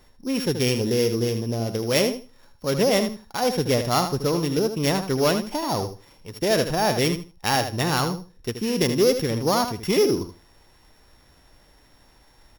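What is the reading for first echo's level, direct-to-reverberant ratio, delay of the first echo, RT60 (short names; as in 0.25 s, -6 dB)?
-9.0 dB, none, 78 ms, none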